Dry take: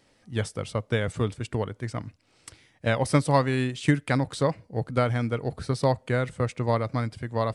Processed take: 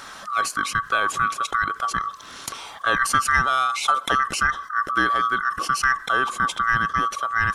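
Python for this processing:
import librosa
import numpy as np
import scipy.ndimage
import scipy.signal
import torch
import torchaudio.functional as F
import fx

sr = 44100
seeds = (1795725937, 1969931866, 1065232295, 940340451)

y = fx.band_swap(x, sr, width_hz=1000)
y = fx.env_flatten(y, sr, amount_pct=50)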